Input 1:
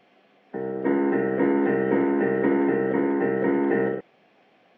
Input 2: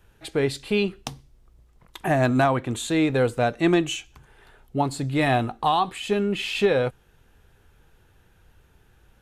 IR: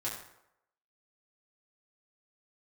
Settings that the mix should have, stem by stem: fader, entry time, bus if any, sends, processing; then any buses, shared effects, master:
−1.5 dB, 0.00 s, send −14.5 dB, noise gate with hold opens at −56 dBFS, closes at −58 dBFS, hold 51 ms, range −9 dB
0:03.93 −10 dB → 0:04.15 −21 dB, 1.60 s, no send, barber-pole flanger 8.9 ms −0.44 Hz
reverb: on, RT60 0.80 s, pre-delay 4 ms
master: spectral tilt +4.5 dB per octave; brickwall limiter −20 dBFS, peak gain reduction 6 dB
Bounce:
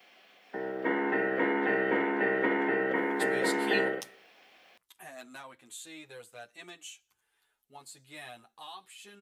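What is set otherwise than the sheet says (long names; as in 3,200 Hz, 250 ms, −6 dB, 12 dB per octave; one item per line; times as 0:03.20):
stem 2: entry 1.60 s → 2.95 s
master: missing brickwall limiter −20 dBFS, peak gain reduction 6 dB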